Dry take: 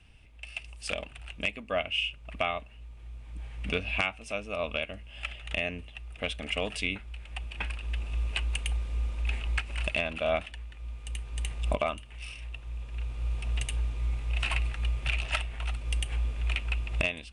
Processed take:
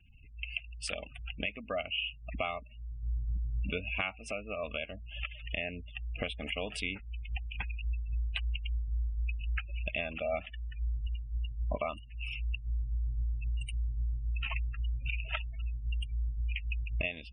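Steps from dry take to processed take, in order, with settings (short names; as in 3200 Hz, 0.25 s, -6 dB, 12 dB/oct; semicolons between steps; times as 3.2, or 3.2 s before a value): recorder AGC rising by 28 dB/s; spectral gate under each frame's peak -20 dB strong; gain -5 dB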